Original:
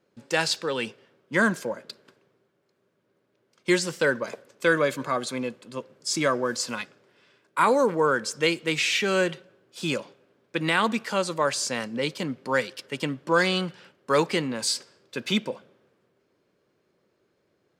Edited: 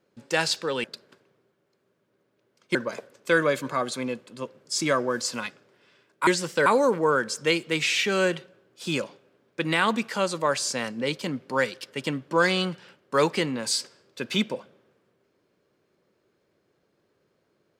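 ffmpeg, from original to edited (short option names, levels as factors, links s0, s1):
-filter_complex "[0:a]asplit=5[s0][s1][s2][s3][s4];[s0]atrim=end=0.842[s5];[s1]atrim=start=1.798:end=3.712[s6];[s2]atrim=start=4.098:end=7.622[s7];[s3]atrim=start=3.708:end=4.102[s8];[s4]atrim=start=7.618[s9];[s5][s6]acrossfade=d=0.004:c1=hsin:c2=hsin[s10];[s10][s7]acrossfade=d=0.004:c1=hsin:c2=hsin[s11];[s11][s8]acrossfade=d=0.004:c1=hsin:c2=hsin[s12];[s12][s9]acrossfade=d=0.004:c1=hsin:c2=hsin"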